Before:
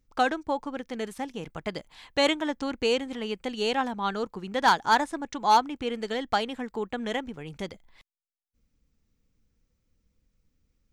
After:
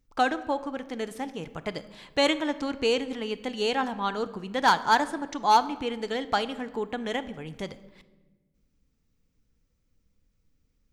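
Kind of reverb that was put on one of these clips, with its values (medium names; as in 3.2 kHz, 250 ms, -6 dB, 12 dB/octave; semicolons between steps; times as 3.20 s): simulated room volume 870 m³, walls mixed, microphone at 0.36 m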